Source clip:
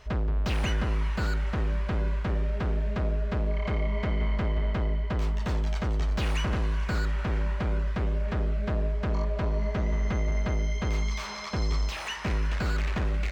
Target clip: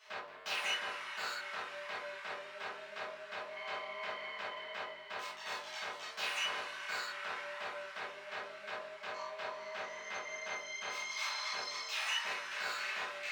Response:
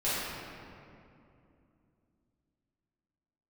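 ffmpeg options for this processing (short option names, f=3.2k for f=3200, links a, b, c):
-filter_complex "[0:a]highpass=1.2k[a];[1:a]atrim=start_sample=2205,atrim=end_sample=3528[b];[a][b]afir=irnorm=-1:irlink=0,volume=-5.5dB"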